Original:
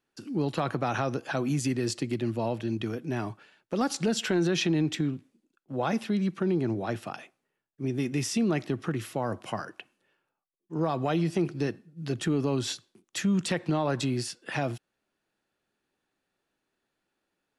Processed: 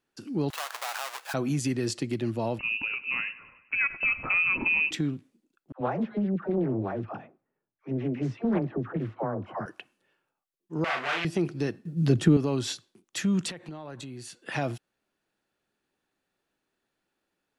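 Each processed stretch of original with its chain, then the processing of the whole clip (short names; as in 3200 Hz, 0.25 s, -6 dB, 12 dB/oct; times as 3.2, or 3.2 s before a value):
0.5–1.34 half-waves squared off + HPF 770 Hz 24 dB/oct + compressor 1.5:1, threshold -39 dBFS
2.59–4.91 feedback echo 99 ms, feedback 57%, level -17.5 dB + inverted band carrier 2800 Hz
5.72–9.66 LPF 1400 Hz + dispersion lows, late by 86 ms, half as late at 600 Hz + Doppler distortion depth 0.4 ms
10.84–11.25 sample leveller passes 5 + band-pass 2100 Hz, Q 1.7 + doubler 36 ms -3 dB
11.85–12.37 low shelf 500 Hz +10.5 dB + three-band squash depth 40%
13.5–14.45 notch 5200 Hz, Q 6.1 + compressor 4:1, threshold -39 dBFS
whole clip: dry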